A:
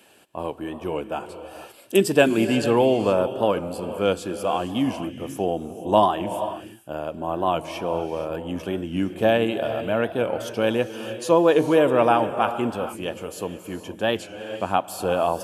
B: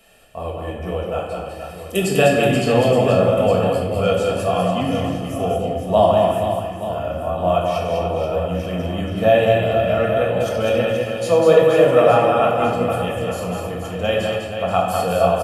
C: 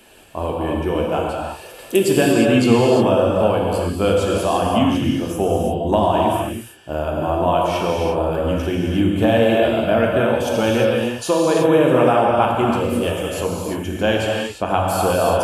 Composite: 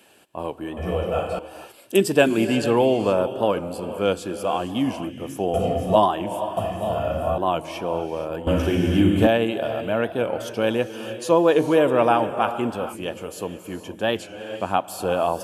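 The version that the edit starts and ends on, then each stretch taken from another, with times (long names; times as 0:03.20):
A
0:00.77–0:01.39: punch in from B
0:05.54–0:05.96: punch in from B
0:06.57–0:07.38: punch in from B
0:08.47–0:09.27: punch in from C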